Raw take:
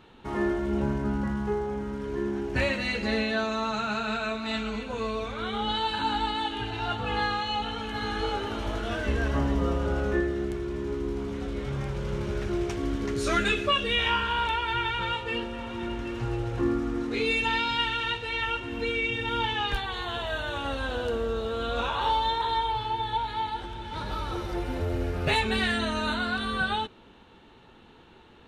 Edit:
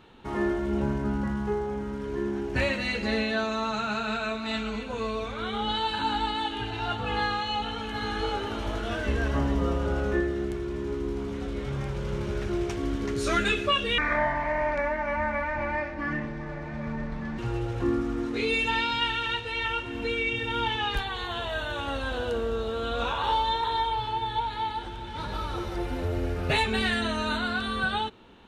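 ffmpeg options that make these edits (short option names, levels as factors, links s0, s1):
-filter_complex "[0:a]asplit=3[s0][s1][s2];[s0]atrim=end=13.984[s3];[s1]atrim=start=13.98:end=16.16,asetpts=PTS-STARTPTS,asetrate=28224,aresample=44100[s4];[s2]atrim=start=16.156[s5];[s3][s4]acrossfade=d=0.004:c1=hsin:c2=hsin[s6];[s6][s5]acrossfade=d=0.004:c1=hsin:c2=hsin"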